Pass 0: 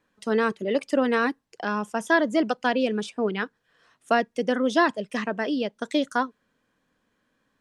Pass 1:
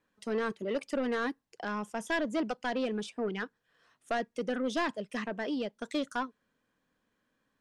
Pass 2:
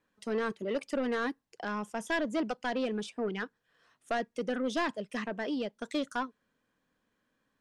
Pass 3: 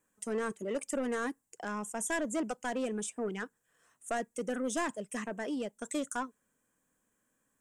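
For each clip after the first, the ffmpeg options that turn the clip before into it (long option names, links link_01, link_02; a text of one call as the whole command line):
ffmpeg -i in.wav -af "asoftclip=type=tanh:threshold=-18.5dB,volume=-6dB" out.wav
ffmpeg -i in.wav -af anull out.wav
ffmpeg -i in.wav -af "highshelf=frequency=5900:width_type=q:width=3:gain=10.5,volume=-2dB" out.wav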